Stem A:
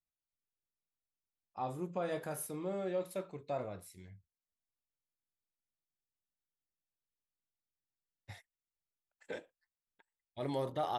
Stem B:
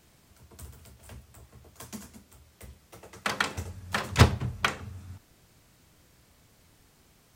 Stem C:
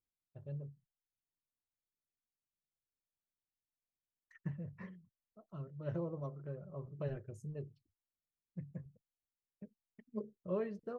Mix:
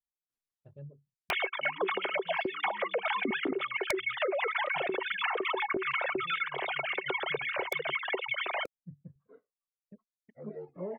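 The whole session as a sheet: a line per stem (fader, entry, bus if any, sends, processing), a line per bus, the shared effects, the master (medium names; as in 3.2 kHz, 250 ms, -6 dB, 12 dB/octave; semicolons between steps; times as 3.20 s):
-2.0 dB, 0.00 s, no bus, no send, frequency axis rescaled in octaves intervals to 79%; low-pass 1.4 kHz 12 dB/octave; Shepard-style flanger falling 1.1 Hz
-4.5 dB, 1.30 s, bus A, no send, formants replaced by sine waves; small resonant body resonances 380/2200 Hz, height 18 dB, ringing for 85 ms; level flattener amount 100%
-0.5 dB, 0.30 s, bus A, no send, low-pass that closes with the level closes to 740 Hz, closed at -38.5 dBFS
bus A: 0.0 dB, bass shelf 64 Hz -11 dB; compression 6:1, threshold -28 dBFS, peak gain reduction 13.5 dB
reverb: none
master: reverb removal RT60 1.9 s; integer overflow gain 18.5 dB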